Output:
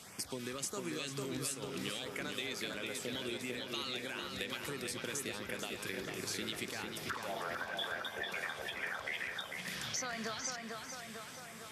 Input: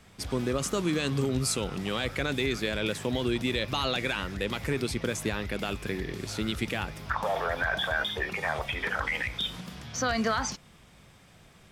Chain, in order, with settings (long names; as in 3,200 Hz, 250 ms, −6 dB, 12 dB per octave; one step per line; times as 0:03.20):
high-pass filter 92 Hz
spectral tilt +2.5 dB per octave
downward compressor 6 to 1, threshold −42 dBFS, peak gain reduction 21.5 dB
auto-filter notch sine 1.5 Hz 630–4,000 Hz
on a send: tape delay 449 ms, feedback 69%, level −3 dB, low-pass 3,500 Hz
on the sum: level +4 dB
MP2 192 kbit/s 48,000 Hz